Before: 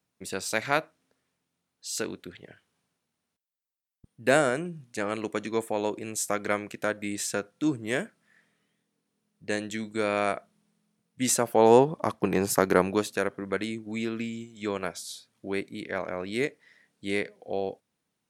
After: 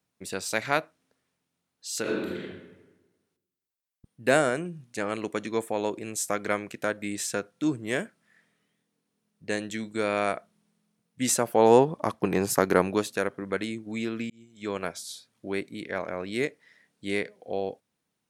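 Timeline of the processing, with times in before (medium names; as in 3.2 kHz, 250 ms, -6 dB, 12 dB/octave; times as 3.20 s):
2.01–2.41 s: reverb throw, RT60 1.2 s, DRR -6 dB
14.30–14.77 s: fade in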